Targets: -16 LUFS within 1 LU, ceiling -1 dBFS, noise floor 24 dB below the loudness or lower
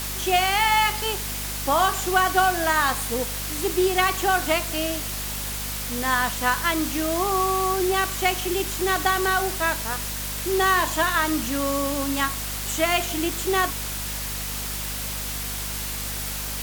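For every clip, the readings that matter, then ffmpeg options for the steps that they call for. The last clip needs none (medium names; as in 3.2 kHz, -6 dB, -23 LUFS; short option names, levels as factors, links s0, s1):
hum 50 Hz; highest harmonic 250 Hz; hum level -33 dBFS; noise floor -30 dBFS; noise floor target -47 dBFS; loudness -23.0 LUFS; peak level -5.5 dBFS; loudness target -16.0 LUFS
-> -af "bandreject=f=50:t=h:w=6,bandreject=f=100:t=h:w=6,bandreject=f=150:t=h:w=6,bandreject=f=200:t=h:w=6,bandreject=f=250:t=h:w=6"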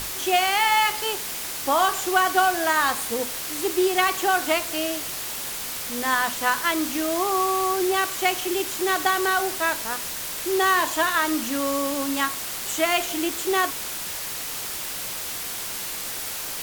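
hum not found; noise floor -32 dBFS; noise floor target -48 dBFS
-> -af "afftdn=nr=16:nf=-32"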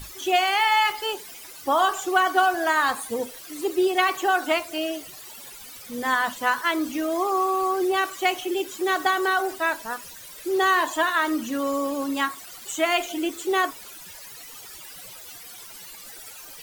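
noise floor -43 dBFS; noise floor target -48 dBFS
-> -af "afftdn=nr=6:nf=-43"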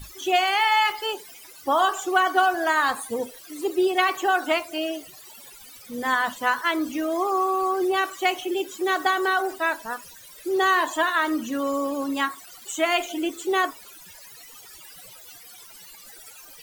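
noise floor -46 dBFS; noise floor target -48 dBFS
-> -af "afftdn=nr=6:nf=-46"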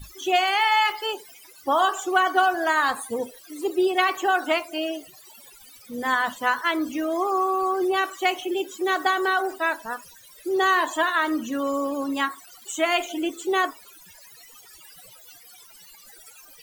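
noise floor -49 dBFS; loudness -23.5 LUFS; peak level -6.0 dBFS; loudness target -16.0 LUFS
-> -af "volume=2.37,alimiter=limit=0.891:level=0:latency=1"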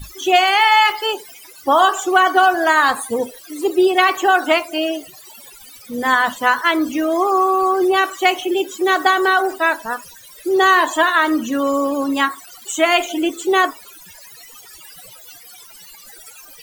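loudness -16.5 LUFS; peak level -1.0 dBFS; noise floor -42 dBFS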